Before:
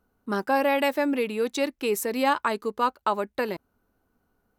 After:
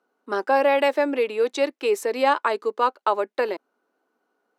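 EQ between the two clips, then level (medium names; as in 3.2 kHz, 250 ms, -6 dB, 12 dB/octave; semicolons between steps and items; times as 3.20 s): high-pass 310 Hz 24 dB/octave; dynamic bell 510 Hz, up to +3 dB, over -33 dBFS, Q 1.2; distance through air 57 m; +2.5 dB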